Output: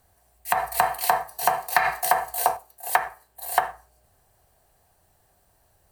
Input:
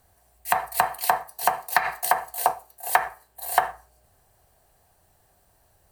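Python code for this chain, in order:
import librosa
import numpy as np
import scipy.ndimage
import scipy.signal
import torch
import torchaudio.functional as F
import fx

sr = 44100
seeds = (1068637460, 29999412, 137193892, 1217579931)

y = fx.hpss(x, sr, part='harmonic', gain_db=8, at=(0.57, 2.57))
y = F.gain(torch.from_numpy(y), -1.0).numpy()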